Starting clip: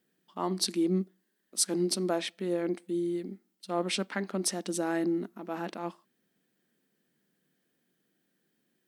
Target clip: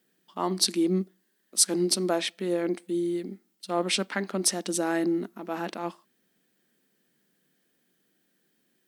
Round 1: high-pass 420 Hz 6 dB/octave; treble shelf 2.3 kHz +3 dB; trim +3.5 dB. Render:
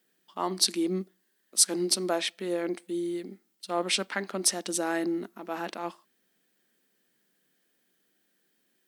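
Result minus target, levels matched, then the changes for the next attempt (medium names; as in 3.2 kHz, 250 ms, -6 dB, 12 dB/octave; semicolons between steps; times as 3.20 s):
125 Hz band -5.0 dB
change: high-pass 130 Hz 6 dB/octave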